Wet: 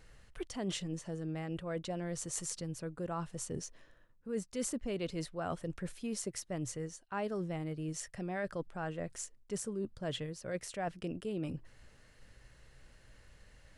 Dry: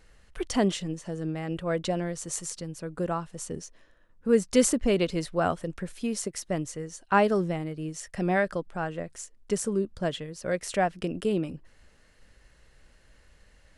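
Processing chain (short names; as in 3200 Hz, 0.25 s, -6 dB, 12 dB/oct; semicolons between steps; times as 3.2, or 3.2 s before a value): bell 120 Hz +9 dB 0.33 oct; reverse; compressor 5:1, threshold -34 dBFS, peak gain reduction 17 dB; reverse; gain -1.5 dB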